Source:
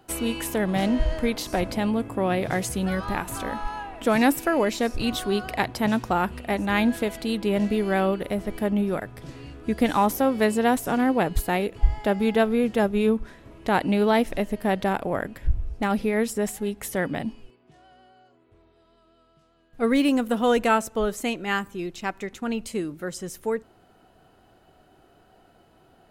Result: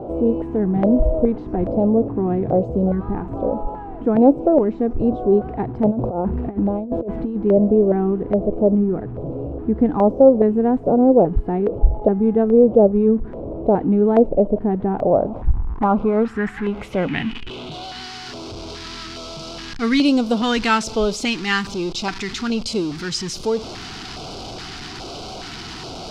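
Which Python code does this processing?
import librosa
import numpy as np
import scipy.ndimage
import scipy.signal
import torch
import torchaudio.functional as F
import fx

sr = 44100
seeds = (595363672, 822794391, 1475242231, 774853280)

y = x + 0.5 * 10.0 ** (-31.5 / 20.0) * np.sign(x)
y = fx.filter_sweep_lowpass(y, sr, from_hz=550.0, to_hz=4900.0, start_s=14.84, end_s=18.13, q=2.8)
y = fx.over_compress(y, sr, threshold_db=-24.0, ratio=-0.5, at=(5.9, 7.35), fade=0.02)
y = fx.filter_lfo_notch(y, sr, shape='square', hz=1.2, low_hz=570.0, high_hz=1800.0, q=0.96)
y = y * 10.0 ** (4.5 / 20.0)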